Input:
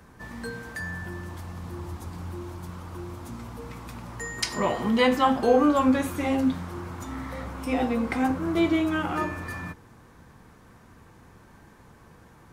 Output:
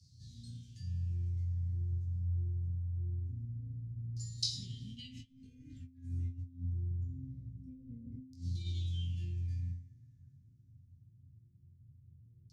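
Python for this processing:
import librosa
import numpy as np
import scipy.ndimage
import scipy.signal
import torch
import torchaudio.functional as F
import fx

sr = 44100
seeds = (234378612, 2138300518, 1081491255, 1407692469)

y = scipy.signal.sosfilt(scipy.signal.butter(2, 78.0, 'highpass', fs=sr, output='sos'), x)
y = fx.resonator_bank(y, sr, root=41, chord='sus4', decay_s=0.57)
y = fx.over_compress(y, sr, threshold_db=-41.0, ratio=-1.0)
y = fx.filter_lfo_lowpass(y, sr, shape='saw_down', hz=0.24, low_hz=430.0, high_hz=4700.0, q=6.8)
y = scipy.signal.sosfilt(scipy.signal.ellip(3, 1.0, 80, [130.0, 6000.0], 'bandstop', fs=sr, output='sos'), y)
y = fx.doubler(y, sr, ms=20.0, db=-5.5)
y = y * librosa.db_to_amplitude(12.0)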